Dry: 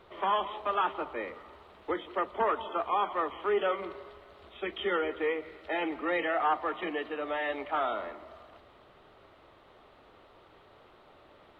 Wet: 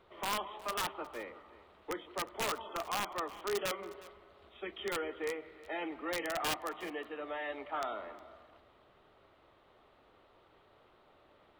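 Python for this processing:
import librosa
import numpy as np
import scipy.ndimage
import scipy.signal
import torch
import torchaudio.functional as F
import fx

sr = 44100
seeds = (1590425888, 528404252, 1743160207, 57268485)

p1 = (np.mod(10.0 ** (20.5 / 20.0) * x + 1.0, 2.0) - 1.0) / 10.0 ** (20.5 / 20.0)
p2 = p1 + fx.echo_single(p1, sr, ms=361, db=-19.5, dry=0)
y = p2 * 10.0 ** (-7.0 / 20.0)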